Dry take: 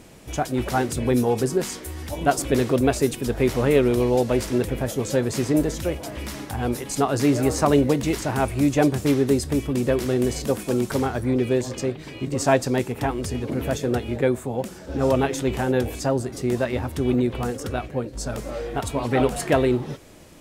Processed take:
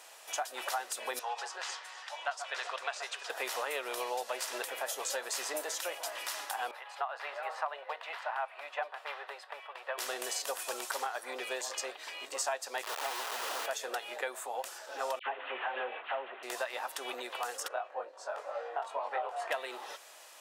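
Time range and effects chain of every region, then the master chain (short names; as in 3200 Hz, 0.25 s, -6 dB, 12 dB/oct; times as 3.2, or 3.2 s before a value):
1.19–3.3 HPF 880 Hz + air absorption 130 m + echo with dull and thin repeats by turns 0.128 s, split 1300 Hz, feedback 55%, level -10 dB
6.71–9.98 HPF 600 Hz 24 dB/oct + air absorption 460 m
12.83–13.66 median filter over 41 samples + BPF 220–2100 Hz + companded quantiser 2-bit
15.19–16.43 CVSD 16 kbps + dispersion lows, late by 77 ms, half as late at 1500 Hz
17.68–19.51 band-pass 690 Hz, Q 1 + doubler 21 ms -2.5 dB
whole clip: HPF 710 Hz 24 dB/oct; notch 2200 Hz, Q 13; compressor 6:1, threshold -32 dBFS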